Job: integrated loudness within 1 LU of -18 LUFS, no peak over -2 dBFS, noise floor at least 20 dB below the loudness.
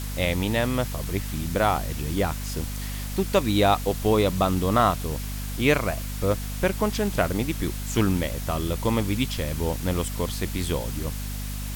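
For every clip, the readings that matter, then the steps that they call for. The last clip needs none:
hum 50 Hz; harmonics up to 250 Hz; hum level -29 dBFS; noise floor -32 dBFS; noise floor target -46 dBFS; loudness -25.5 LUFS; peak -5.5 dBFS; loudness target -18.0 LUFS
-> notches 50/100/150/200/250 Hz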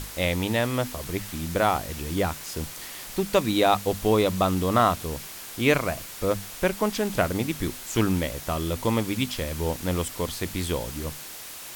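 hum none; noise floor -40 dBFS; noise floor target -46 dBFS
-> denoiser 6 dB, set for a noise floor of -40 dBFS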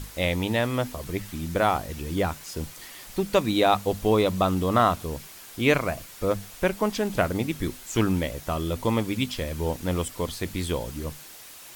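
noise floor -45 dBFS; noise floor target -47 dBFS
-> denoiser 6 dB, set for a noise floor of -45 dBFS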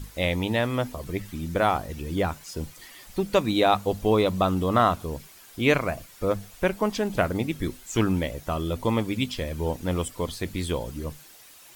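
noise floor -50 dBFS; loudness -26.5 LUFS; peak -6.5 dBFS; loudness target -18.0 LUFS
-> gain +8.5 dB; limiter -2 dBFS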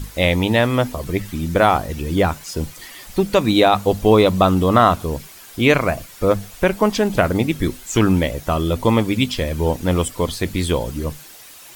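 loudness -18.5 LUFS; peak -2.0 dBFS; noise floor -41 dBFS

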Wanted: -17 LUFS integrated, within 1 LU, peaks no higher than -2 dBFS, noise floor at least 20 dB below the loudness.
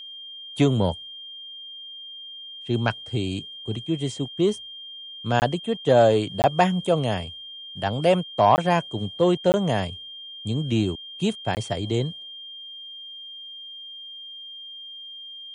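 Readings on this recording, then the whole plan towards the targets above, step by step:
dropouts 5; longest dropout 19 ms; steady tone 3200 Hz; tone level -37 dBFS; loudness -23.5 LUFS; peak -4.5 dBFS; loudness target -17.0 LUFS
-> interpolate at 5.4/6.42/8.56/9.52/11.55, 19 ms; notch 3200 Hz, Q 30; gain +6.5 dB; limiter -2 dBFS

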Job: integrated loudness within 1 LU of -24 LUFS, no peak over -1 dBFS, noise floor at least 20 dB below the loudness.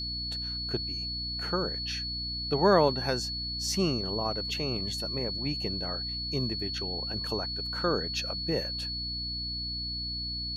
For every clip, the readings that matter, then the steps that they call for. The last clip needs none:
hum 60 Hz; harmonics up to 300 Hz; hum level -38 dBFS; steady tone 4400 Hz; tone level -33 dBFS; loudness -30.0 LUFS; peak -10.0 dBFS; loudness target -24.0 LUFS
-> notches 60/120/180/240/300 Hz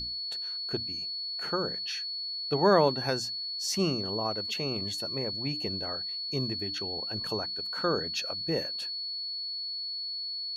hum none; steady tone 4400 Hz; tone level -33 dBFS
-> notch 4400 Hz, Q 30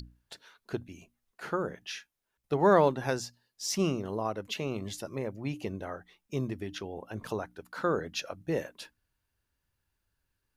steady tone none; loudness -32.5 LUFS; peak -10.5 dBFS; loudness target -24.0 LUFS
-> gain +8.5 dB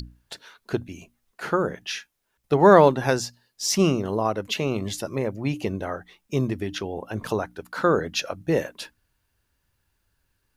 loudness -24.0 LUFS; peak -2.0 dBFS; noise floor -74 dBFS

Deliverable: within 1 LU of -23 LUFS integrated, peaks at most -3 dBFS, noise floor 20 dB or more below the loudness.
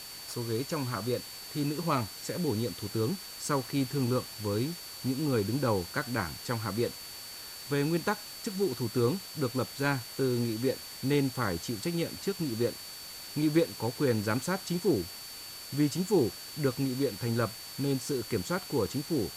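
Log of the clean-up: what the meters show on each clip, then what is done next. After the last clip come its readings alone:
steady tone 4500 Hz; tone level -45 dBFS; noise floor -44 dBFS; noise floor target -52 dBFS; loudness -31.5 LUFS; peak -14.0 dBFS; loudness target -23.0 LUFS
-> notch 4500 Hz, Q 30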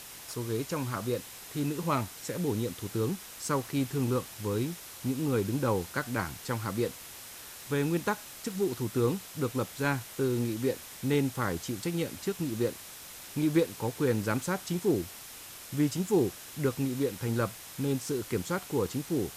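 steady tone none; noise floor -46 dBFS; noise floor target -52 dBFS
-> denoiser 6 dB, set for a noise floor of -46 dBFS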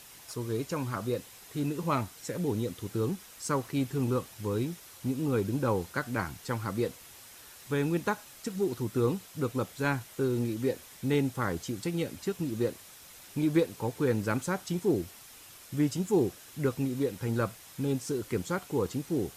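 noise floor -51 dBFS; noise floor target -52 dBFS
-> denoiser 6 dB, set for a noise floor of -51 dBFS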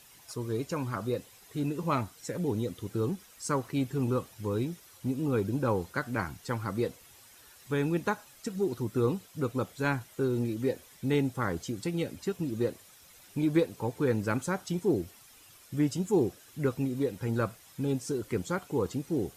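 noise floor -56 dBFS; loudness -32.0 LUFS; peak -14.0 dBFS; loudness target -23.0 LUFS
-> gain +9 dB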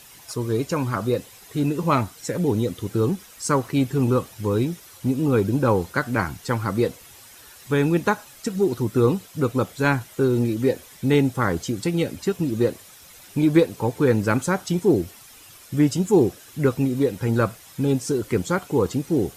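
loudness -23.0 LUFS; peak -5.0 dBFS; noise floor -47 dBFS

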